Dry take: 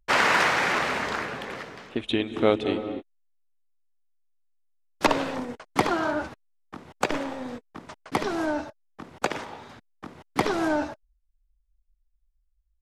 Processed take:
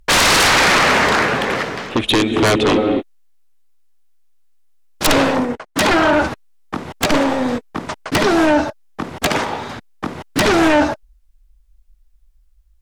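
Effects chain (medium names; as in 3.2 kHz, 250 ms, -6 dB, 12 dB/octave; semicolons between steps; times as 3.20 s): sine folder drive 16 dB, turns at -6.5 dBFS; 5.03–6.13 s: three bands expanded up and down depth 70%; trim -3 dB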